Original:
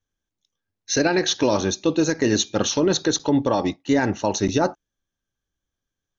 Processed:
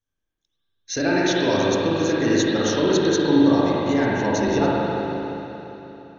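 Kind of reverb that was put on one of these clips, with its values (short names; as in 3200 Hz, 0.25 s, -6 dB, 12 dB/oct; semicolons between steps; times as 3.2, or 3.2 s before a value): spring tank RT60 3.5 s, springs 39/57 ms, chirp 70 ms, DRR -6.5 dB; gain -5.5 dB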